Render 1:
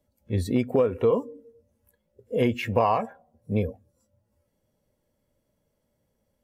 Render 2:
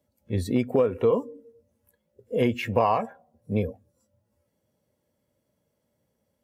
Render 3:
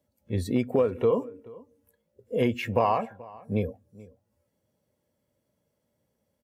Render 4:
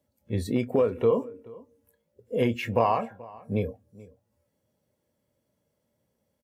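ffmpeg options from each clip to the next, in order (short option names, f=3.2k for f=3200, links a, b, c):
-af "highpass=80"
-filter_complex "[0:a]asplit=2[a][b];[b]adelay=431.5,volume=-21dB,highshelf=f=4k:g=-9.71[c];[a][c]amix=inputs=2:normalize=0,volume=-1.5dB"
-filter_complex "[0:a]asplit=2[a][b];[b]adelay=26,volume=-13dB[c];[a][c]amix=inputs=2:normalize=0"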